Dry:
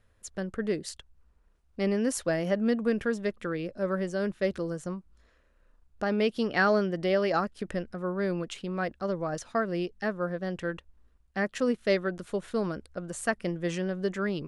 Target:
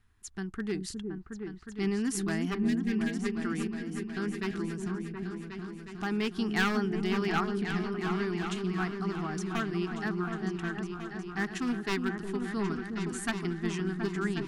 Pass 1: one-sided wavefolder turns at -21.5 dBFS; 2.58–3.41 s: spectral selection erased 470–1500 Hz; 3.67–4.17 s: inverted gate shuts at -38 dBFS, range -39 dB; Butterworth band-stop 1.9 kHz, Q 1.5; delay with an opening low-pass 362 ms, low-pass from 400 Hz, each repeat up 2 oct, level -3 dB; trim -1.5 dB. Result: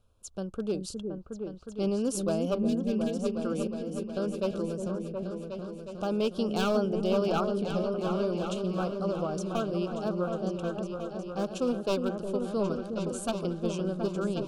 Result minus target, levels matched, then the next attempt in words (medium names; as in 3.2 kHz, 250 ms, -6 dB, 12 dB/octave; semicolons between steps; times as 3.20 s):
2 kHz band -11.5 dB
one-sided wavefolder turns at -21.5 dBFS; 2.58–3.41 s: spectral selection erased 470–1500 Hz; 3.67–4.17 s: inverted gate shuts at -38 dBFS, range -39 dB; Butterworth band-stop 550 Hz, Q 1.5; delay with an opening low-pass 362 ms, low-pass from 400 Hz, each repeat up 2 oct, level -3 dB; trim -1.5 dB